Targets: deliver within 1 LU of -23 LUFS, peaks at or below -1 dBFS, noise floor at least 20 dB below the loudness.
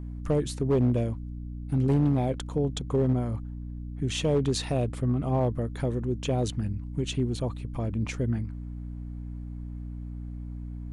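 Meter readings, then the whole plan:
clipped samples 0.8%; clipping level -17.5 dBFS; hum 60 Hz; highest harmonic 300 Hz; hum level -34 dBFS; loudness -29.0 LUFS; peak level -17.5 dBFS; loudness target -23.0 LUFS
-> clip repair -17.5 dBFS; de-hum 60 Hz, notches 5; trim +6 dB

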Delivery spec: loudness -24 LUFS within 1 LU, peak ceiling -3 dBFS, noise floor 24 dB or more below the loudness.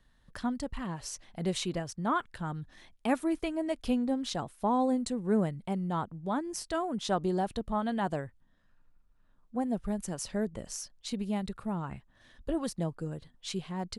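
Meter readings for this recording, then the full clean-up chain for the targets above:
loudness -33.5 LUFS; peak level -15.0 dBFS; loudness target -24.0 LUFS
-> trim +9.5 dB

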